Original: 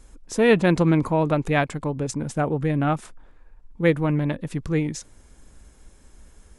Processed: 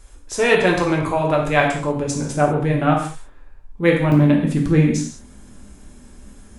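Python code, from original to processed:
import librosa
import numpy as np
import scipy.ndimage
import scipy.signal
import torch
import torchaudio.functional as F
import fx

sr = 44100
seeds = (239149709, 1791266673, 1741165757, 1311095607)

y = fx.peak_eq(x, sr, hz=220.0, db=fx.steps((0.0, -12.5), (1.6, -3.5), (4.12, 9.0)), octaves=1.0)
y = fx.rev_gated(y, sr, seeds[0], gate_ms=220, shape='falling', drr_db=-1.0)
y = y * 10.0 ** (3.0 / 20.0)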